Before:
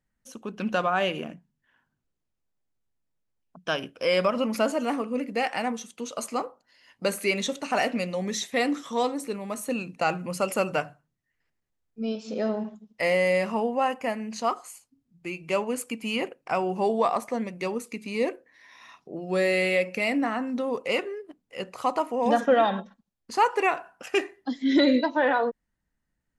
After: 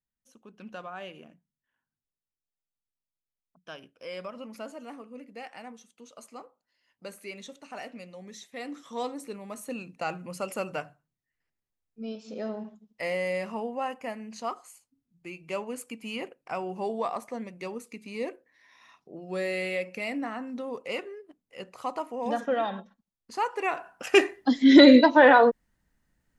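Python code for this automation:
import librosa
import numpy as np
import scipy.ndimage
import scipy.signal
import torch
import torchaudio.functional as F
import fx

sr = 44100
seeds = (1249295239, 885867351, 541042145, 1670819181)

y = fx.gain(x, sr, db=fx.line((8.51, -15.5), (9.02, -7.0), (23.61, -7.0), (23.79, -1.0), (24.23, 7.0)))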